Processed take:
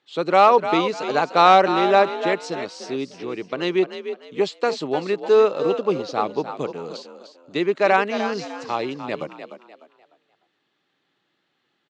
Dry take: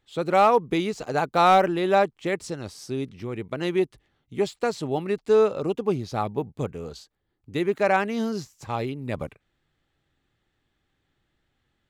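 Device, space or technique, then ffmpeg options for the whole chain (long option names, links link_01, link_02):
television speaker: -filter_complex "[0:a]highpass=frequency=180:width=0.5412,highpass=frequency=180:width=1.3066,equalizer=frequency=220:width_type=q:width=4:gain=-6,equalizer=frequency=1100:width_type=q:width=4:gain=3,equalizer=frequency=2800:width_type=q:width=4:gain=3,equalizer=frequency=4200:width_type=q:width=4:gain=4,lowpass=frequency=6600:width=0.5412,lowpass=frequency=6600:width=1.3066,asplit=5[link_01][link_02][link_03][link_04][link_05];[link_02]adelay=300,afreqshift=47,volume=-10dB[link_06];[link_03]adelay=600,afreqshift=94,volume=-19.9dB[link_07];[link_04]adelay=900,afreqshift=141,volume=-29.8dB[link_08];[link_05]adelay=1200,afreqshift=188,volume=-39.7dB[link_09];[link_01][link_06][link_07][link_08][link_09]amix=inputs=5:normalize=0,volume=3.5dB"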